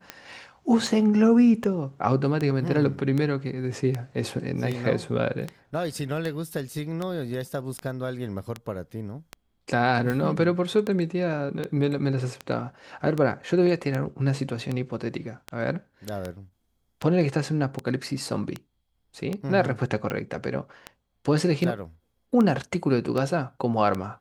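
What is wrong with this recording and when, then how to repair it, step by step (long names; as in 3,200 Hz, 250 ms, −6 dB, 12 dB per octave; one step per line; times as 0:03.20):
scratch tick 78 rpm −16 dBFS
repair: click removal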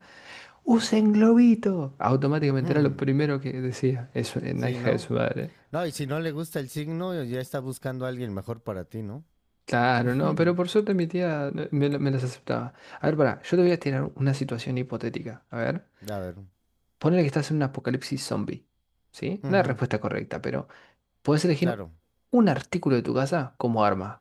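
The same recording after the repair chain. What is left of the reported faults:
none of them is left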